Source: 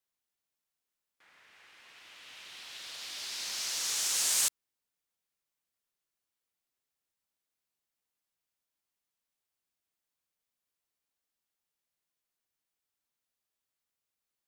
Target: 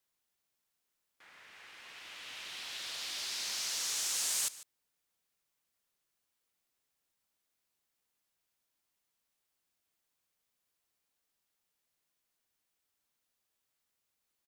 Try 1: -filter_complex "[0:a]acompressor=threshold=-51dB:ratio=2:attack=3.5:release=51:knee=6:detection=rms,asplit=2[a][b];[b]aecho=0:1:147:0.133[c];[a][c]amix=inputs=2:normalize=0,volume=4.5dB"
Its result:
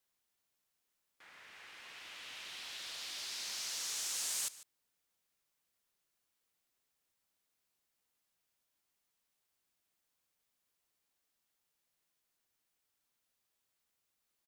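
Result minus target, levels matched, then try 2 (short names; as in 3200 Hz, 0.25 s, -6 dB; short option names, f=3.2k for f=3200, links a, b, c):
compressor: peak gain reduction +4 dB
-filter_complex "[0:a]acompressor=threshold=-42.5dB:ratio=2:attack=3.5:release=51:knee=6:detection=rms,asplit=2[a][b];[b]aecho=0:1:147:0.133[c];[a][c]amix=inputs=2:normalize=0,volume=4.5dB"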